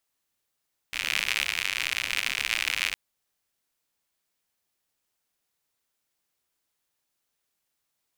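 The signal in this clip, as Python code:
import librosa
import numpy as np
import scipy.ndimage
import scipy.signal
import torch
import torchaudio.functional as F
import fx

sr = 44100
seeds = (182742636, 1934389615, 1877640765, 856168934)

y = fx.rain(sr, seeds[0], length_s=2.01, drops_per_s=92.0, hz=2400.0, bed_db=-21.0)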